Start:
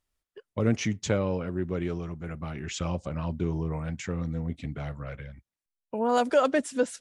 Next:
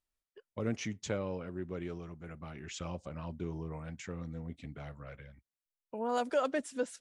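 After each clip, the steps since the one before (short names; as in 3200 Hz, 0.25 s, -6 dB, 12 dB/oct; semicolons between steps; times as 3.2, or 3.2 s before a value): bell 100 Hz -3.5 dB 2.2 oct; gain -8 dB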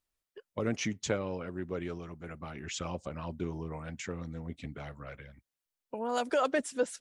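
harmonic-percussive split percussive +6 dB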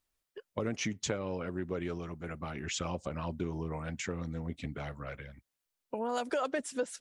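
compressor 3:1, threshold -34 dBFS, peak gain reduction 8.5 dB; gain +3 dB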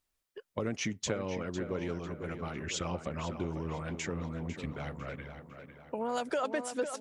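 tape echo 0.501 s, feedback 53%, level -8 dB, low-pass 3600 Hz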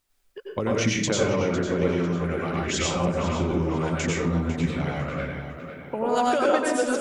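reverb RT60 0.55 s, pre-delay 87 ms, DRR -2.5 dB; gain +6.5 dB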